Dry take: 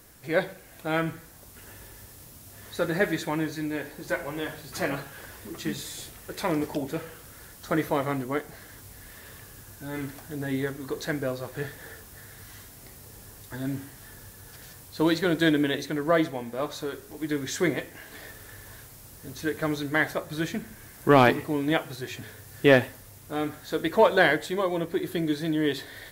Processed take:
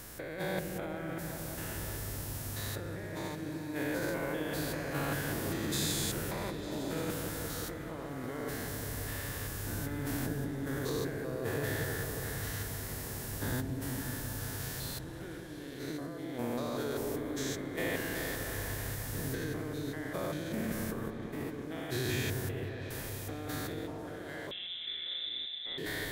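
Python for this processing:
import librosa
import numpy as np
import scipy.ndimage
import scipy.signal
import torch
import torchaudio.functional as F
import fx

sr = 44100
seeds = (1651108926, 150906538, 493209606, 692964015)

y = fx.spec_steps(x, sr, hold_ms=200)
y = fx.over_compress(y, sr, threshold_db=-40.0, ratio=-1.0)
y = fx.echo_opening(y, sr, ms=180, hz=400, octaves=1, feedback_pct=70, wet_db=-3)
y = fx.freq_invert(y, sr, carrier_hz=3800, at=(24.51, 25.78))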